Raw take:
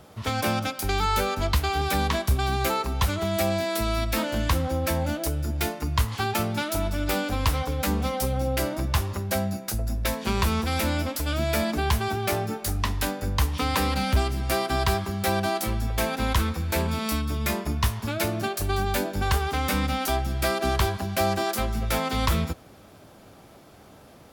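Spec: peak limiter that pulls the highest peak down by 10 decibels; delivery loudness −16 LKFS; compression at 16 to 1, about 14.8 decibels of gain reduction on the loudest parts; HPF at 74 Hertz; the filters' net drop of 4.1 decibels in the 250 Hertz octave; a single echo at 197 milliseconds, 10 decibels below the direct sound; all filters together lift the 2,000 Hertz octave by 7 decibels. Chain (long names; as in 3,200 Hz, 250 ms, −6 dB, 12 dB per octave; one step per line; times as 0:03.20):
high-pass filter 74 Hz
parametric band 250 Hz −5.5 dB
parametric band 2,000 Hz +9 dB
downward compressor 16 to 1, threshold −34 dBFS
brickwall limiter −27.5 dBFS
single-tap delay 197 ms −10 dB
level +22.5 dB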